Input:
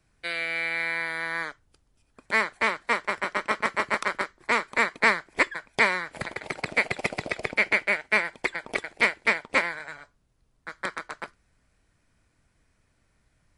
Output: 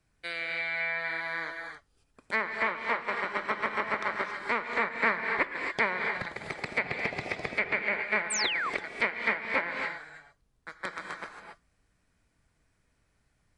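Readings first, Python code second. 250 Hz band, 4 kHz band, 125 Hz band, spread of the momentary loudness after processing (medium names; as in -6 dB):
-4.0 dB, -3.0 dB, -3.0 dB, 12 LU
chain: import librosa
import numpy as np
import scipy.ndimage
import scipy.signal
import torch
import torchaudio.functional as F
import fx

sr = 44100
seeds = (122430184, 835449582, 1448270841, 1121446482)

y = fx.rev_gated(x, sr, seeds[0], gate_ms=300, shape='rising', drr_db=3.5)
y = fx.env_lowpass_down(y, sr, base_hz=2400.0, full_db=-19.5)
y = fx.spec_paint(y, sr, seeds[1], shape='fall', start_s=8.3, length_s=0.4, low_hz=980.0, high_hz=9100.0, level_db=-26.0)
y = y * 10.0 ** (-5.0 / 20.0)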